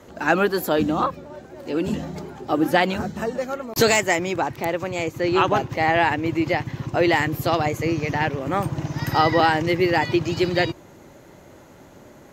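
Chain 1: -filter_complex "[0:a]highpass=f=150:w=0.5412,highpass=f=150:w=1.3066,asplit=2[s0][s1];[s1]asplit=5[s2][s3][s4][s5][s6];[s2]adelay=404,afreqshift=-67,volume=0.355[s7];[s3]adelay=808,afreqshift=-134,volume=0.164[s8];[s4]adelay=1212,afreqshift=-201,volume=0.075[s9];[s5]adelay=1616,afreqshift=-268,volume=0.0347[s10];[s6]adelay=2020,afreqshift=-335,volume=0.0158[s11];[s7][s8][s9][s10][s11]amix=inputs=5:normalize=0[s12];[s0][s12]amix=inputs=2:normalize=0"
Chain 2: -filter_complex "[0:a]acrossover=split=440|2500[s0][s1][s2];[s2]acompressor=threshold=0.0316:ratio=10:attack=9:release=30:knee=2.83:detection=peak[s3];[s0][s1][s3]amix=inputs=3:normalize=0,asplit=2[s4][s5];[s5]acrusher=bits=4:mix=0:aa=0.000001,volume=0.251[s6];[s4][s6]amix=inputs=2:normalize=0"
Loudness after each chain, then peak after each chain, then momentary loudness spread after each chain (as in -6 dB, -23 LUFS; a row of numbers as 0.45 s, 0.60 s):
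-22.0 LUFS, -20.0 LUFS; -3.0 dBFS, -2.0 dBFS; 10 LU, 8 LU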